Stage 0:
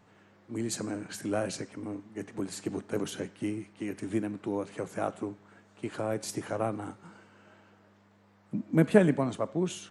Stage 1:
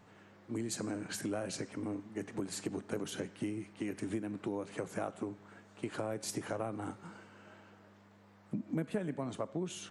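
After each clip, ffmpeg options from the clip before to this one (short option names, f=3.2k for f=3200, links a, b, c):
-af "acompressor=threshold=-35dB:ratio=5,volume=1dB"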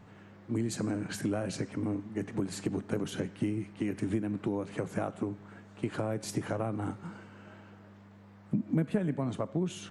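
-af "bass=f=250:g=7,treble=f=4k:g=-4,volume=3dB"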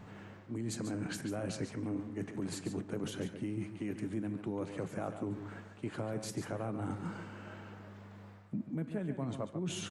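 -af "areverse,acompressor=threshold=-38dB:ratio=6,areverse,aecho=1:1:142:0.335,volume=3dB"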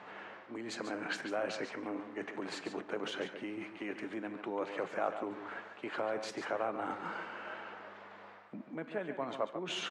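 -af "highpass=580,lowpass=3.3k,volume=8.5dB"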